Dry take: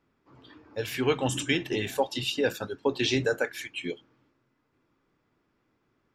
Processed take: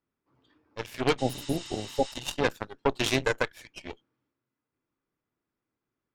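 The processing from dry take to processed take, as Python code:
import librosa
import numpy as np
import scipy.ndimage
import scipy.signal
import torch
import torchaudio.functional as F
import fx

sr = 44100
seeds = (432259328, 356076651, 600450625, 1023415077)

y = fx.cheby_harmonics(x, sr, harmonics=(5, 6, 7, 8), levels_db=(-36, -14, -18, -27), full_scale_db=-11.0)
y = fx.spec_repair(y, sr, seeds[0], start_s=1.21, length_s=0.88, low_hz=850.0, high_hz=9200.0, source='after')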